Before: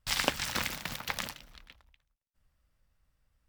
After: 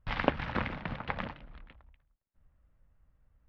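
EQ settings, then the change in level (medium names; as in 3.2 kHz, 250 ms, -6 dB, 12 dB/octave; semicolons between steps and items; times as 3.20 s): distance through air 340 m; tape spacing loss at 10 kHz 30 dB; +7.0 dB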